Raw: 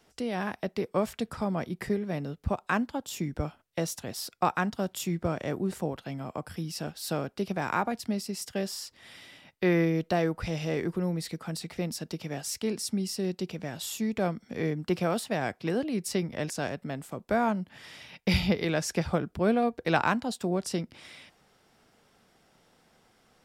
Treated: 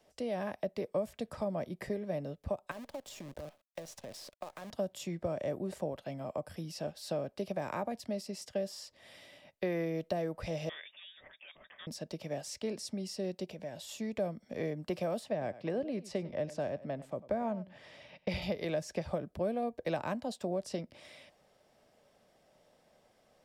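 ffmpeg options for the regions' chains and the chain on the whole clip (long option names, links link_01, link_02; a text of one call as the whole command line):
ffmpeg -i in.wav -filter_complex "[0:a]asettb=1/sr,asplit=3[link_01][link_02][link_03];[link_01]atrim=end=2.714[link_04];[link_02]atrim=start=2.71:end=4.71,asetpts=PTS-STARTPTS,afade=type=in:duration=0.004:curve=qsin,afade=type=out:start_time=1.996:duration=0.004:curve=qsin,acompressor=threshold=-36dB:ratio=16:attack=3.2:release=140:knee=1:detection=peak,acrusher=bits=8:dc=4:mix=0:aa=0.000001[link_05];[link_03]atrim=start=4.706[link_06];[link_04][link_05]acrossfade=duration=0.004:curve1=hsin:curve2=qsin[link_07];[link_07][link_06]acrossfade=duration=0.004:curve1=qsin:curve2=hsin,asettb=1/sr,asplit=3[link_08][link_09][link_10];[link_08]atrim=end=10.694[link_11];[link_09]atrim=start=10.69:end=11.87,asetpts=PTS-STARTPTS,afade=type=in:duration=0.004:curve=qsin,afade=type=out:start_time=1.176:duration=0.004:curve=qsin,highpass=970,lowpass=frequency=3300:width_type=q:width=0.5098,lowpass=frequency=3300:width_type=q:width=0.6013,lowpass=frequency=3300:width_type=q:width=0.9,lowpass=frequency=3300:width_type=q:width=2.563,afreqshift=-3900[link_12];[link_10]atrim=start=11.866[link_13];[link_11][link_12]acrossfade=duration=0.004:curve1=hsin:curve2=qsin[link_14];[link_14][link_13]acrossfade=duration=0.004:curve1=qsin:curve2=hsin,asettb=1/sr,asplit=3[link_15][link_16][link_17];[link_15]atrim=end=13.444[link_18];[link_16]atrim=start=13.44:end=13.89,asetpts=PTS-STARTPTS,afade=type=in:duration=0.004:curve=qsin,afade=type=out:start_time=0.446:duration=0.004:curve=qsin,bandreject=frequency=1200:width=8.4,acompressor=threshold=-37dB:ratio=2.5:attack=3.2:release=140:knee=1:detection=peak[link_19];[link_17]atrim=start=13.886[link_20];[link_18][link_19]acrossfade=duration=0.004:curve1=hsin:curve2=qsin[link_21];[link_21][link_20]acrossfade=duration=0.004:curve1=qsin:curve2=hsin,asettb=1/sr,asplit=3[link_22][link_23][link_24];[link_22]atrim=end=15.314[link_25];[link_23]atrim=start=15.31:end=18.42,asetpts=PTS-STARTPTS,afade=type=in:duration=0.004:curve=qsin,afade=type=out:start_time=3.106:duration=0.004:curve=qsin,aemphasis=mode=reproduction:type=50fm,aecho=1:1:97:0.119,atrim=end_sample=137151[link_26];[link_24]atrim=start=18.416[link_27];[link_25][link_26]acrossfade=duration=0.004:curve1=hsin:curve2=qsin[link_28];[link_28][link_27]acrossfade=duration=0.004:curve1=qsin:curve2=hsin,equalizer=frequency=590:width_type=o:width=0.4:gain=13.5,bandreject=frequency=1400:width=9,acrossover=split=360|8000[link_29][link_30][link_31];[link_29]acompressor=threshold=-30dB:ratio=4[link_32];[link_30]acompressor=threshold=-28dB:ratio=4[link_33];[link_31]acompressor=threshold=-54dB:ratio=4[link_34];[link_32][link_33][link_34]amix=inputs=3:normalize=0,volume=-6.5dB" out.wav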